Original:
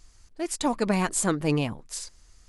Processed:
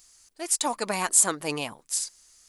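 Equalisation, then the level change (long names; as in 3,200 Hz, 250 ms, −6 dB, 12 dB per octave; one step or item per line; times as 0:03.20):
RIAA equalisation recording
dynamic equaliser 880 Hz, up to +5 dB, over −41 dBFS, Q 0.92
−3.5 dB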